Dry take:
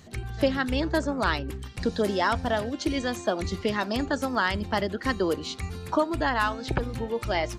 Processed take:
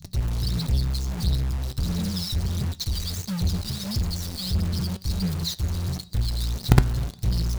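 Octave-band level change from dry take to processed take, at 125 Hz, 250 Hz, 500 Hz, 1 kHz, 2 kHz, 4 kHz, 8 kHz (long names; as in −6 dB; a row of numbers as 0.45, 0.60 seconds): +10.5, −2.0, −13.0, −12.0, −12.5, +3.0, +6.5 decibels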